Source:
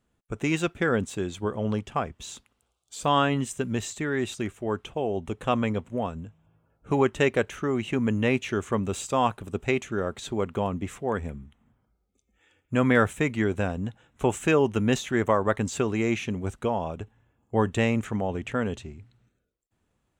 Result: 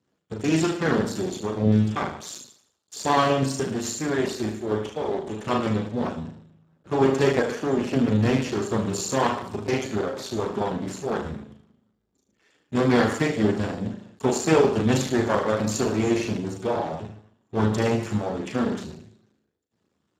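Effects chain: half-wave gain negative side -12 dB; flutter echo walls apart 6.4 m, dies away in 0.63 s; gain +6 dB; Speex 8 kbps 32000 Hz

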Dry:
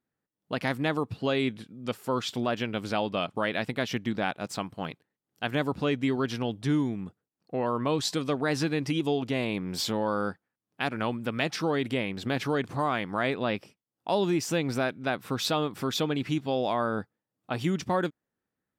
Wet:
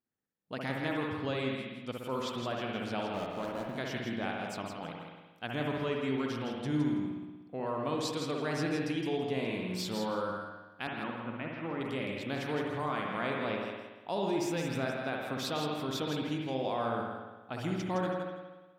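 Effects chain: 3.09–3.76 median filter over 25 samples; 10.87–11.81 speaker cabinet 140–2200 Hz, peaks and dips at 440 Hz -7 dB, 710 Hz -7 dB, 1700 Hz -6 dB; on a send: thinning echo 0.164 s, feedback 18%, high-pass 410 Hz, level -6 dB; on the sum: spring tank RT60 1.2 s, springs 60 ms, chirp 60 ms, DRR 0.5 dB; gain -8.5 dB

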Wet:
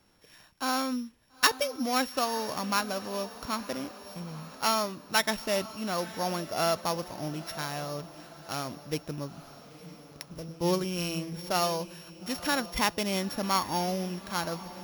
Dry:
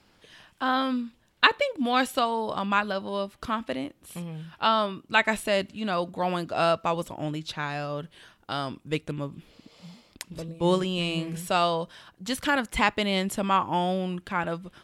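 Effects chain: sample sorter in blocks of 8 samples; diffused feedback echo 0.923 s, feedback 46%, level -15 dB; gain -4 dB

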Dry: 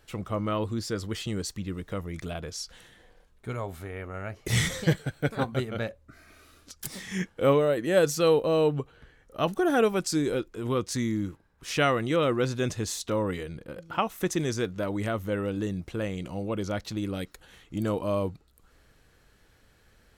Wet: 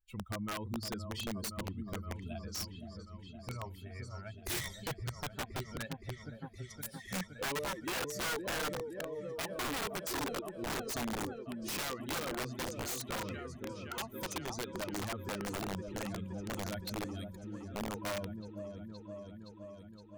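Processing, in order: per-bin expansion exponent 2; compressor 4:1, threshold -43 dBFS, peak gain reduction 19.5 dB; repeats that get brighter 0.518 s, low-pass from 750 Hz, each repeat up 1 oct, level -6 dB; wrapped overs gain 37.5 dB; gain +6 dB

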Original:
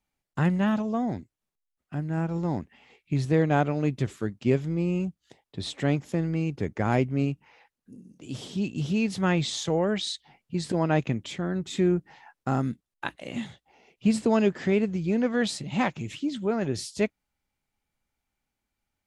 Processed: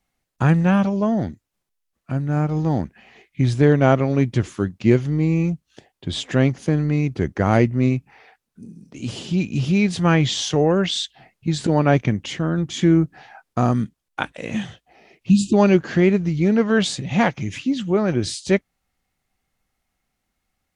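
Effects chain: spectral delete 14.05–14.28, 390–2700 Hz; speed mistake 48 kHz file played as 44.1 kHz; gain +7.5 dB

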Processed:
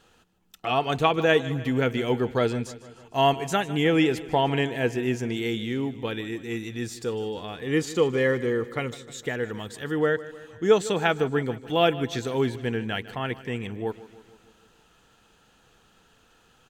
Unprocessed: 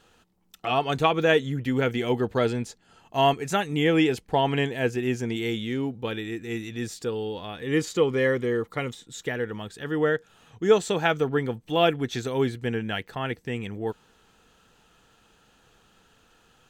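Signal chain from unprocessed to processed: 9.43–9.94 high shelf 5300 Hz +7 dB; feedback echo 0.153 s, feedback 59%, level -17 dB

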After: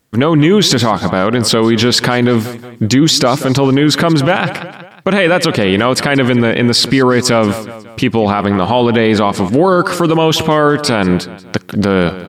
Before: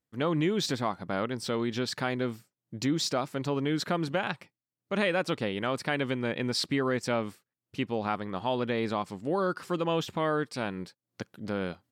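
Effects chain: varispeed -3%; feedback echo 0.182 s, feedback 46%, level -20 dB; maximiser +26.5 dB; gain -1 dB

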